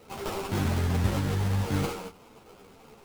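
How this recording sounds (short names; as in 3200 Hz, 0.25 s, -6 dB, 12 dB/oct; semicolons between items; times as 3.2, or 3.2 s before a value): aliases and images of a low sample rate 1800 Hz, jitter 20%; a shimmering, thickened sound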